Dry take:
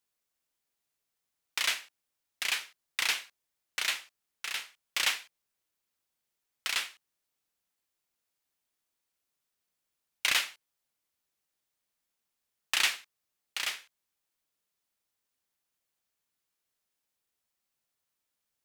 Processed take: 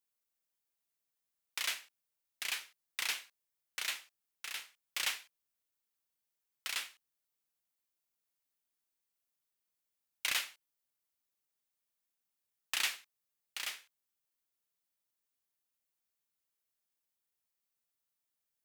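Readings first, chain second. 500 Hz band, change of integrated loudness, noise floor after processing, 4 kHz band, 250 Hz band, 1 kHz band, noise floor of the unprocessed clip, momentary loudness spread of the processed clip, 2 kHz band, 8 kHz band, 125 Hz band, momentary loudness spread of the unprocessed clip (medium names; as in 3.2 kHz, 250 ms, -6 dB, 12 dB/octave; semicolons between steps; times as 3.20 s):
-7.5 dB, -6.5 dB, under -85 dBFS, -7.0 dB, -7.5 dB, -7.5 dB, -85 dBFS, 12 LU, -7.0 dB, -5.0 dB, no reading, 12 LU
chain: treble shelf 10 kHz +7.5 dB; trim -7.5 dB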